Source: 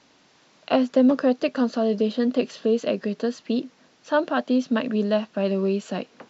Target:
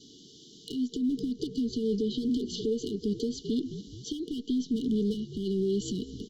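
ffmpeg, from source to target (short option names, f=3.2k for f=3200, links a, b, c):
-filter_complex "[0:a]asplit=3[a][b][c];[a]afade=t=out:st=2.05:d=0.02[d];[b]bandreject=f=60:t=h:w=6,bandreject=f=120:t=h:w=6,bandreject=f=180:t=h:w=6,bandreject=f=240:t=h:w=6,bandreject=f=300:t=h:w=6,bandreject=f=360:t=h:w=6,afade=t=in:st=2.05:d=0.02,afade=t=out:st=2.74:d=0.02[e];[c]afade=t=in:st=2.74:d=0.02[f];[d][e][f]amix=inputs=3:normalize=0,asettb=1/sr,asplit=3[g][h][i];[g]atrim=end=5.144[j];[h]atrim=start=5.14:end=5.81,asetpts=PTS-STARTPTS,afade=t=in:d=0.004:c=qsin,afade=t=out:st=0.666:d=0.004:c=qsin,highpass=f=170:w=0.5412,highpass=f=170:w=1.3066[k];[i]atrim=start=5.806[l];[j][k]acrossfade=d=0.004:c1=hsin:c2=qsin[m];[m][l]acrossfade=d=0.004:c1=qsin:c2=hsin,asplit=4[n][o][p][q];[o]adelay=213,afreqshift=-62,volume=-23.5dB[r];[p]adelay=426,afreqshift=-124,volume=-29.5dB[s];[q]adelay=639,afreqshift=-186,volume=-35.5dB[t];[n][r][s][t]amix=inputs=4:normalize=0,adynamicequalizer=threshold=0.00316:dfrequency=1600:dqfactor=5.6:tfrequency=1600:tqfactor=5.6:attack=5:release=100:ratio=0.375:range=2.5:mode=cutabove:tftype=bell,acompressor=threshold=-28dB:ratio=8,alimiter=level_in=0.5dB:limit=-24dB:level=0:latency=1:release=179,volume=-0.5dB,volume=31.5dB,asoftclip=hard,volume=-31.5dB,afftfilt=real='re*(1-between(b*sr/4096,470,2900))':imag='im*(1-between(b*sr/4096,470,2900))':win_size=4096:overlap=0.75,volume=8dB" -ar 48000 -c:a libopus -b:a 64k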